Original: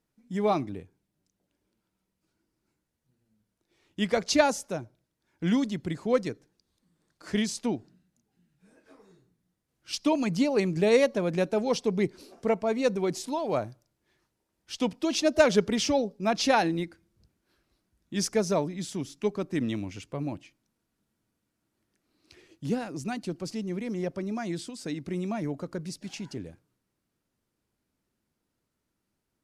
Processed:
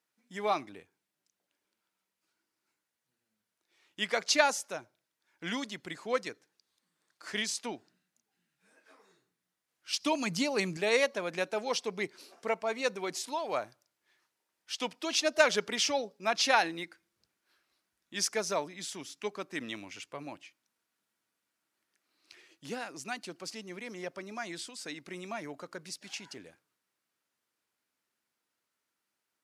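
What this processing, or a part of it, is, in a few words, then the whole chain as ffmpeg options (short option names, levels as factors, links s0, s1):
filter by subtraction: -filter_complex "[0:a]asettb=1/sr,asplit=3[s0][s1][s2];[s0]atrim=end=10.004[s3];[s1]atrim=start=10:end=10.77,asetpts=PTS-STARTPTS,afade=t=in:d=0.004:c=qsin,afade=t=out:st=0.766:d=0.004:c=qsin,bass=f=250:g=11,treble=f=4000:g=5[s4];[s2]atrim=start=10.766[s5];[s3][s4]acrossfade=d=0.004:c1=hsin:c2=qsin[s6];[s6][s5]acrossfade=d=0.004:c1=qsin:c2=hsin,asplit=2[s7][s8];[s8]lowpass=1600,volume=-1[s9];[s7][s9]amix=inputs=2:normalize=0"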